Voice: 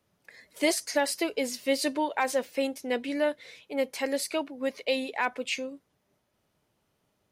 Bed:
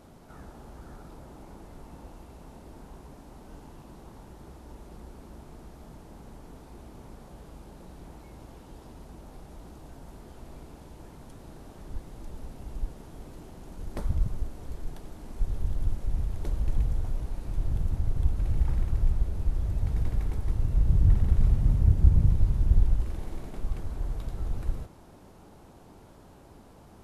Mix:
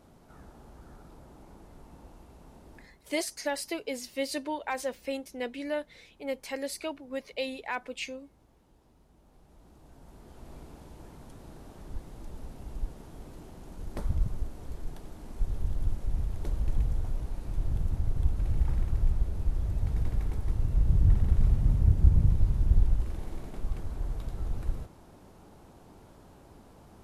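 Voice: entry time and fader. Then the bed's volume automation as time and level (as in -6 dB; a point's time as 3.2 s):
2.50 s, -5.5 dB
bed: 2.78 s -5 dB
2.99 s -16.5 dB
9.09 s -16.5 dB
10.53 s -1.5 dB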